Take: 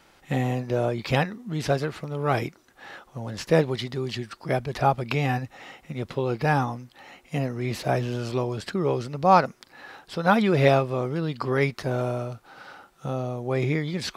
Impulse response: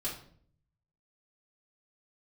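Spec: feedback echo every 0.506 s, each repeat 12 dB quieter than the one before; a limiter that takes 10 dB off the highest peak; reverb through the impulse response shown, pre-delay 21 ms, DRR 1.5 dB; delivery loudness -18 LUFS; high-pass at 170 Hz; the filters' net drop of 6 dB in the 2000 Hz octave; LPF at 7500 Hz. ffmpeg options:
-filter_complex "[0:a]highpass=170,lowpass=7.5k,equalizer=f=2k:t=o:g=-8,alimiter=limit=-16dB:level=0:latency=1,aecho=1:1:506|1012|1518:0.251|0.0628|0.0157,asplit=2[a][b];[1:a]atrim=start_sample=2205,adelay=21[c];[b][c]afir=irnorm=-1:irlink=0,volume=-4dB[d];[a][d]amix=inputs=2:normalize=0,volume=9dB"

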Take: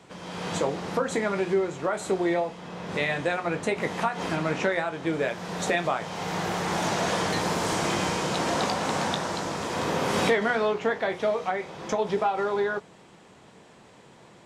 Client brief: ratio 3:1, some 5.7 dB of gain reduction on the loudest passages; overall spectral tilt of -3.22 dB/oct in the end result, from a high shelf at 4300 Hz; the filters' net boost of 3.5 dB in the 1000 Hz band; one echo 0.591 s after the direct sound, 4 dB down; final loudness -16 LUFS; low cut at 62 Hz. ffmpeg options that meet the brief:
-af "highpass=62,equalizer=f=1k:t=o:g=4,highshelf=f=4.3k:g=8,acompressor=threshold=-26dB:ratio=3,aecho=1:1:591:0.631,volume=12dB"

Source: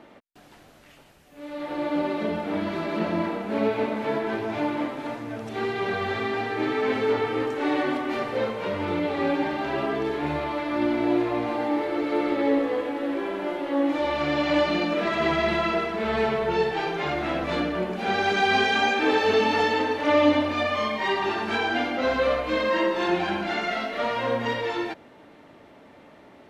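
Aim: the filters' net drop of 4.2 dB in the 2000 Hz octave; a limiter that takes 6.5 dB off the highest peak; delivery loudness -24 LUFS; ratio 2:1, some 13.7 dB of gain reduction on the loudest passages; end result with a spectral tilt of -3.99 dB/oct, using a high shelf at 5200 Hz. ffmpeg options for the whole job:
-af "equalizer=f=2k:t=o:g=-4.5,highshelf=f=5.2k:g=-6,acompressor=threshold=-41dB:ratio=2,volume=14dB,alimiter=limit=-15dB:level=0:latency=1"

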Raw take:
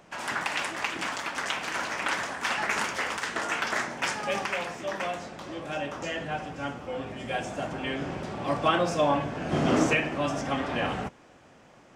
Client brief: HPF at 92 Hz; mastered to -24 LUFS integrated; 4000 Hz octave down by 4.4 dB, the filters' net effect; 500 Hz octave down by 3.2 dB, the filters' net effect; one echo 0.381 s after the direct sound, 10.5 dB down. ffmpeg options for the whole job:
-af "highpass=92,equalizer=f=500:t=o:g=-4,equalizer=f=4k:t=o:g=-6.5,aecho=1:1:381:0.299,volume=7dB"

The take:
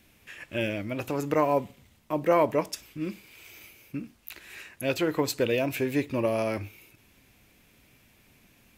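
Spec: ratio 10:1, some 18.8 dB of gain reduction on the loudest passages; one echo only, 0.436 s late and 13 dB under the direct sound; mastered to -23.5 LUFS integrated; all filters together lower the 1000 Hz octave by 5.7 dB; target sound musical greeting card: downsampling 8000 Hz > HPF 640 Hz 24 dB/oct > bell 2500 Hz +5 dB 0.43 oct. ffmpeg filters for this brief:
-af "equalizer=f=1k:t=o:g=-6.5,acompressor=threshold=-40dB:ratio=10,aecho=1:1:436:0.224,aresample=8000,aresample=44100,highpass=f=640:w=0.5412,highpass=f=640:w=1.3066,equalizer=f=2.5k:t=o:w=0.43:g=5,volume=24.5dB"

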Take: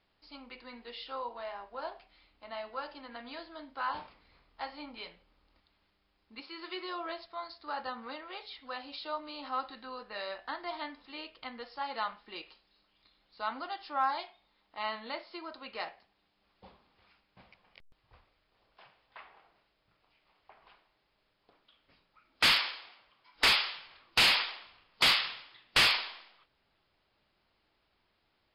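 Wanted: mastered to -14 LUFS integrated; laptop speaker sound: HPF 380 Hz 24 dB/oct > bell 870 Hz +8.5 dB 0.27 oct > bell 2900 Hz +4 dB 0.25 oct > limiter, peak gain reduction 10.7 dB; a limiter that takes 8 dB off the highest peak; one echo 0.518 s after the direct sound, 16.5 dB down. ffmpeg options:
-af "alimiter=level_in=3dB:limit=-24dB:level=0:latency=1,volume=-3dB,highpass=f=380:w=0.5412,highpass=f=380:w=1.3066,equalizer=f=870:t=o:w=0.27:g=8.5,equalizer=f=2.9k:t=o:w=0.25:g=4,aecho=1:1:518:0.15,volume=28.5dB,alimiter=limit=-3.5dB:level=0:latency=1"

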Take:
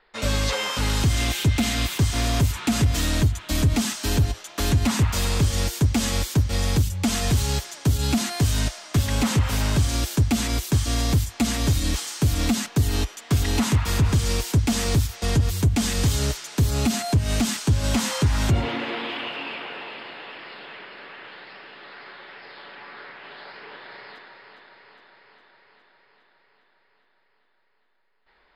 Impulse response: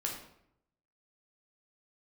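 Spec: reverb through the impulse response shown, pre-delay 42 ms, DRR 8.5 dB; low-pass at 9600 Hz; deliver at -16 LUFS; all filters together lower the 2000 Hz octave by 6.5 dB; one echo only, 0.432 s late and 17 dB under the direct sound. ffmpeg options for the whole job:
-filter_complex "[0:a]lowpass=9.6k,equalizer=f=2k:t=o:g=-8.5,aecho=1:1:432:0.141,asplit=2[a][b];[1:a]atrim=start_sample=2205,adelay=42[c];[b][c]afir=irnorm=-1:irlink=0,volume=-11dB[d];[a][d]amix=inputs=2:normalize=0,volume=7dB"

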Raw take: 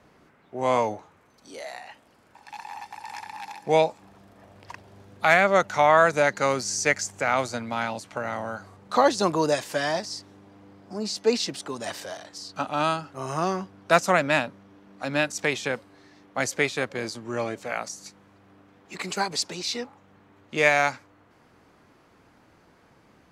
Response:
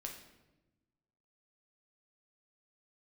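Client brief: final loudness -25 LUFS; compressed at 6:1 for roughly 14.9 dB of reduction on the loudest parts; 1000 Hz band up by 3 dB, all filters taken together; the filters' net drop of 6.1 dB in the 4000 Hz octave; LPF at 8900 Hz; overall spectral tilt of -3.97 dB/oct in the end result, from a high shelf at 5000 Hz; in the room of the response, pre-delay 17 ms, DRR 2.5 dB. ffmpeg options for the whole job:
-filter_complex "[0:a]lowpass=8.9k,equalizer=f=1k:t=o:g=4.5,equalizer=f=4k:t=o:g=-5.5,highshelf=f=5k:g=-4.5,acompressor=threshold=-28dB:ratio=6,asplit=2[a][b];[1:a]atrim=start_sample=2205,adelay=17[c];[b][c]afir=irnorm=-1:irlink=0,volume=0dB[d];[a][d]amix=inputs=2:normalize=0,volume=7.5dB"

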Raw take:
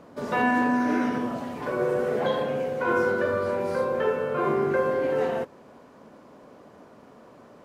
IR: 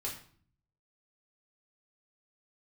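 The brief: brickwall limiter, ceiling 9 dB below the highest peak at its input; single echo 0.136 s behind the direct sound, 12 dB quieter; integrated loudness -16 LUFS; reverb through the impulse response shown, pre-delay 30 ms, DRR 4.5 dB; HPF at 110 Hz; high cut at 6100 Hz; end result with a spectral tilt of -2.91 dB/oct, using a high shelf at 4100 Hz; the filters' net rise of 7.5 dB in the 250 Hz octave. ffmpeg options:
-filter_complex "[0:a]highpass=110,lowpass=6.1k,equalizer=f=250:t=o:g=8.5,highshelf=f=4.1k:g=-5.5,alimiter=limit=-17.5dB:level=0:latency=1,aecho=1:1:136:0.251,asplit=2[a][b];[1:a]atrim=start_sample=2205,adelay=30[c];[b][c]afir=irnorm=-1:irlink=0,volume=-5.5dB[d];[a][d]amix=inputs=2:normalize=0,volume=8.5dB"

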